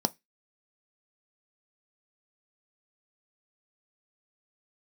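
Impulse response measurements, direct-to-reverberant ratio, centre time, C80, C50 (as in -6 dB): 11.5 dB, 3 ms, 38.5 dB, 28.0 dB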